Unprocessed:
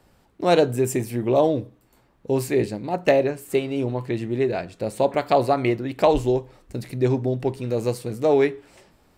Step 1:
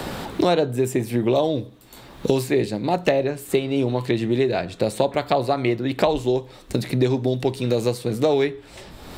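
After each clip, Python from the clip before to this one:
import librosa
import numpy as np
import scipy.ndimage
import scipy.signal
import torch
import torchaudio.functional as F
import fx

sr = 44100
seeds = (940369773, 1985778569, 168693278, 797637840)

y = fx.peak_eq(x, sr, hz=3700.0, db=7.5, octaves=0.43)
y = fx.band_squash(y, sr, depth_pct=100)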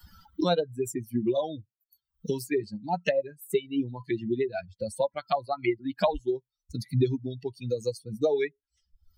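y = fx.bin_expand(x, sr, power=3.0)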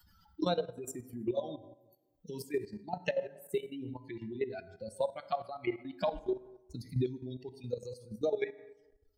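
y = fx.rev_plate(x, sr, seeds[0], rt60_s=1.1, hf_ratio=0.55, predelay_ms=0, drr_db=10.0)
y = fx.level_steps(y, sr, step_db=12)
y = y * librosa.db_to_amplitude(-4.5)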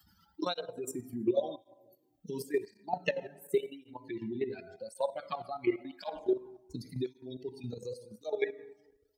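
y = fx.flanger_cancel(x, sr, hz=0.91, depth_ms=2.1)
y = y * librosa.db_to_amplitude(5.0)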